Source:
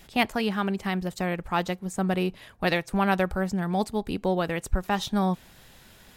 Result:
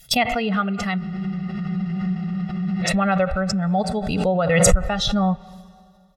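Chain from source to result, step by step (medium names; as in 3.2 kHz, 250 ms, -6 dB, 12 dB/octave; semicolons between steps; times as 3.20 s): expander on every frequency bin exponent 1.5; treble shelf 3.8 kHz +5.5 dB; gate -59 dBFS, range -33 dB; in parallel at 0 dB: peak limiter -18 dBFS, peak gain reduction 9 dB; on the sum: band-stop 800 Hz, Q 18; reverberation RT60 2.3 s, pre-delay 21 ms, DRR 18.5 dB; low-pass that closes with the level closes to 2.6 kHz, closed at -18.5 dBFS; comb 1.5 ms, depth 87%; spectral freeze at 1.00 s, 1.82 s; swell ahead of each attack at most 31 dB/s; trim -1 dB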